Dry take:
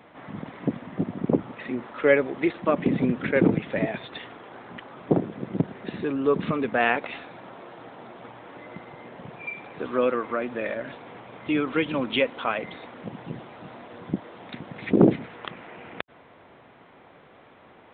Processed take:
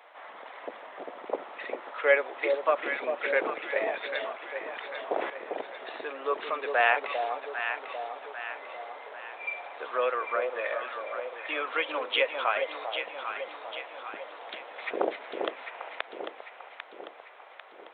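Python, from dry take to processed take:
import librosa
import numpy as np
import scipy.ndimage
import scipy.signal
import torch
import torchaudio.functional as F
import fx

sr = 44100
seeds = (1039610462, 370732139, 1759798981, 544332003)

y = scipy.signal.sosfilt(scipy.signal.butter(4, 560.0, 'highpass', fs=sr, output='sos'), x)
y = fx.echo_alternate(y, sr, ms=398, hz=850.0, feedback_pct=70, wet_db=-4.0)
y = fx.sustainer(y, sr, db_per_s=52.0, at=(4.64, 5.3))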